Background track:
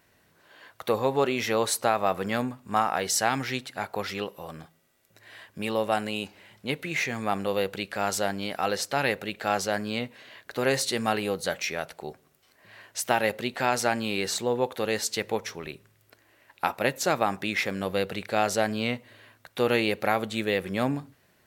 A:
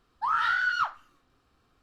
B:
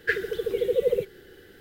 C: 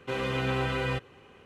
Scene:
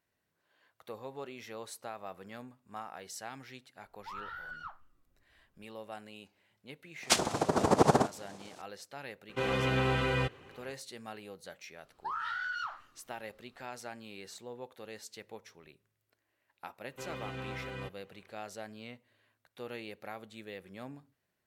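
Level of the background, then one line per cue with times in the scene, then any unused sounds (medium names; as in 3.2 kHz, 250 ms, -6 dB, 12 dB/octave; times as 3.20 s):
background track -19 dB
3.84 s: add A -16.5 dB + tilt EQ -3.5 dB/octave
7.02 s: add B -1.5 dB + noise-vocoded speech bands 2
9.29 s: add C -0.5 dB
11.83 s: add A -3 dB + compression 5:1, threshold -31 dBFS
16.90 s: add C -12.5 dB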